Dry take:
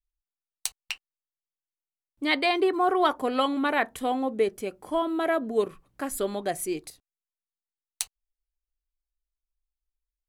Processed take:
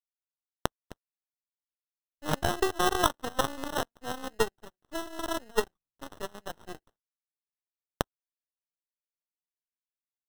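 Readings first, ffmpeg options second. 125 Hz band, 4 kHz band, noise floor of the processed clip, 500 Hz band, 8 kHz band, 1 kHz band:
+8.5 dB, -3.0 dB, under -85 dBFS, -6.5 dB, -3.0 dB, -5.0 dB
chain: -af "acrusher=samples=19:mix=1:aa=0.000001,aeval=exprs='0.447*(cos(1*acos(clip(val(0)/0.447,-1,1)))-cos(1*PI/2))+0.0794*(cos(4*acos(clip(val(0)/0.447,-1,1)))-cos(4*PI/2))+0.0631*(cos(7*acos(clip(val(0)/0.447,-1,1)))-cos(7*PI/2))':c=same"

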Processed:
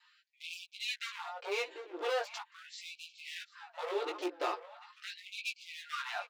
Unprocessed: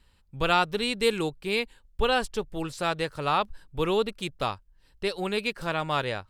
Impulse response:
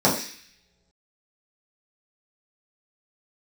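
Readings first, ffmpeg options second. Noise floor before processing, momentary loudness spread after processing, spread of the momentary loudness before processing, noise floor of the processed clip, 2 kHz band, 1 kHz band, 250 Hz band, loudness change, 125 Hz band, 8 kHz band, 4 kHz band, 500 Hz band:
-62 dBFS, 11 LU, 9 LU, -70 dBFS, -9.5 dB, -12.5 dB, -16.5 dB, -11.5 dB, under -40 dB, -7.5 dB, -10.0 dB, -11.5 dB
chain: -filter_complex "[0:a]aresample=16000,asoftclip=type=tanh:threshold=0.1,aresample=44100,lowpass=f=3100:p=1,adynamicequalizer=threshold=0.00794:dfrequency=250:dqfactor=0.77:tfrequency=250:tqfactor=0.77:attack=5:release=100:ratio=0.375:range=3:mode=boostabove:tftype=bell,aecho=1:1:5.7:0.96,acompressor=threshold=0.0316:ratio=6,bandreject=f=49.39:t=h:w=4,bandreject=f=98.78:t=h:w=4,bandreject=f=148.17:t=h:w=4,bandreject=f=197.56:t=h:w=4,bandreject=f=246.95:t=h:w=4,bandreject=f=296.34:t=h:w=4,asoftclip=type=hard:threshold=0.0251,flanger=delay=15:depth=2.5:speed=1.1,asplit=2[s0][s1];[s1]adelay=743,lowpass=f=2200:p=1,volume=0.266,asplit=2[s2][s3];[s3]adelay=743,lowpass=f=2200:p=1,volume=0.32,asplit=2[s4][s5];[s5]adelay=743,lowpass=f=2200:p=1,volume=0.32[s6];[s2][s4][s6]amix=inputs=3:normalize=0[s7];[s0][s7]amix=inputs=2:normalize=0,afftfilt=real='re*gte(b*sr/1024,260*pow(2300/260,0.5+0.5*sin(2*PI*0.41*pts/sr)))':imag='im*gte(b*sr/1024,260*pow(2300/260,0.5+0.5*sin(2*PI*0.41*pts/sr)))':win_size=1024:overlap=0.75,volume=2.11"

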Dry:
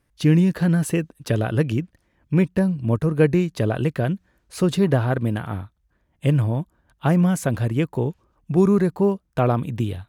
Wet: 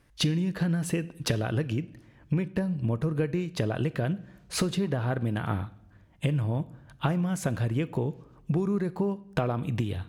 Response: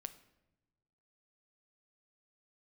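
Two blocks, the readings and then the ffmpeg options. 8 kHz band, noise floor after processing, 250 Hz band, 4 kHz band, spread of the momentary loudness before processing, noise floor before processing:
-2.0 dB, -57 dBFS, -8.5 dB, +1.0 dB, 9 LU, -68 dBFS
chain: -filter_complex "[0:a]lowpass=f=3600:p=1,acompressor=threshold=0.0316:ratio=12,asplit=2[s0][s1];[1:a]atrim=start_sample=2205,asetrate=48510,aresample=44100,highshelf=f=2000:g=10.5[s2];[s1][s2]afir=irnorm=-1:irlink=0,volume=1.58[s3];[s0][s3]amix=inputs=2:normalize=0"

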